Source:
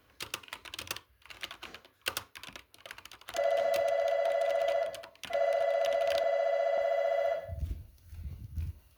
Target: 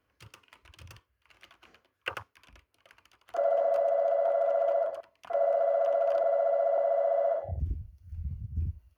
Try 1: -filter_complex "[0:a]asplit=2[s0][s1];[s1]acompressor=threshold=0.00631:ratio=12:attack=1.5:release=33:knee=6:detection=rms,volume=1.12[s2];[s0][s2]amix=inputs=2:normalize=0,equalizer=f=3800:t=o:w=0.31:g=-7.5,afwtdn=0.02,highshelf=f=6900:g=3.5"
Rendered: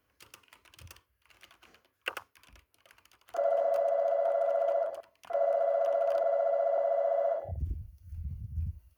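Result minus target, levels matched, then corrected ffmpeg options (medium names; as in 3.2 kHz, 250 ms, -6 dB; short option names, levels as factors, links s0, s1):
compression: peak gain reduction +9 dB; 8 kHz band +5.5 dB
-filter_complex "[0:a]asplit=2[s0][s1];[s1]acompressor=threshold=0.02:ratio=12:attack=1.5:release=33:knee=6:detection=rms,volume=1.12[s2];[s0][s2]amix=inputs=2:normalize=0,equalizer=f=3800:t=o:w=0.31:g=-7.5,afwtdn=0.02,highshelf=f=6900:g=-7.5"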